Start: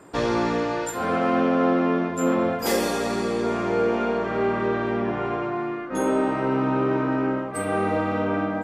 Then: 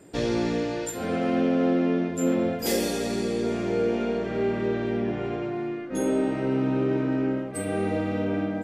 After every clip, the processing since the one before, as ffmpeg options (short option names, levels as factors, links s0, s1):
-af "equalizer=f=1100:w=1.3:g=-14.5"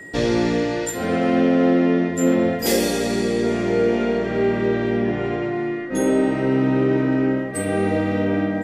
-af "aeval=exprs='val(0)+0.00708*sin(2*PI*1900*n/s)':c=same,volume=2"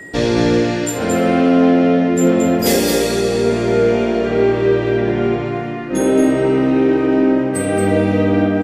-af "aecho=1:1:78.72|224.5:0.251|0.562,volume=1.58"